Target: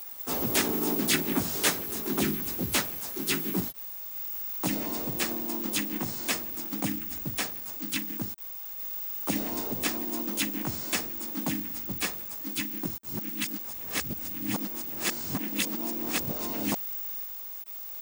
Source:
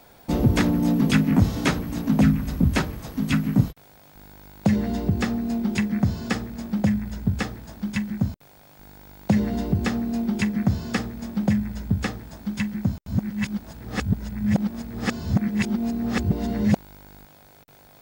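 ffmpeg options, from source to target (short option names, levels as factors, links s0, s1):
-filter_complex "[0:a]aemphasis=mode=production:type=riaa,asplit=4[s0][s1][s2][s3];[s1]asetrate=55563,aresample=44100,atempo=0.793701,volume=0.501[s4];[s2]asetrate=58866,aresample=44100,atempo=0.749154,volume=0.794[s5];[s3]asetrate=66075,aresample=44100,atempo=0.66742,volume=0.794[s6];[s0][s4][s5][s6]amix=inputs=4:normalize=0,acrusher=bits=3:mode=log:mix=0:aa=0.000001,volume=0.422"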